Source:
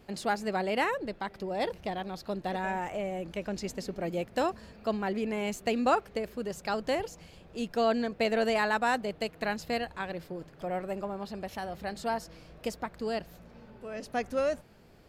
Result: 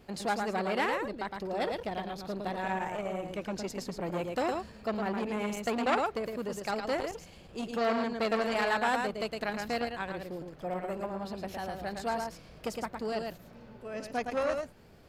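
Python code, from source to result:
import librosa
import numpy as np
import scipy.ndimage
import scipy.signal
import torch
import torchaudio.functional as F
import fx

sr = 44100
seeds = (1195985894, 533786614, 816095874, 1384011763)

p1 = x + fx.echo_single(x, sr, ms=111, db=-5.0, dry=0)
y = fx.transformer_sat(p1, sr, knee_hz=1600.0)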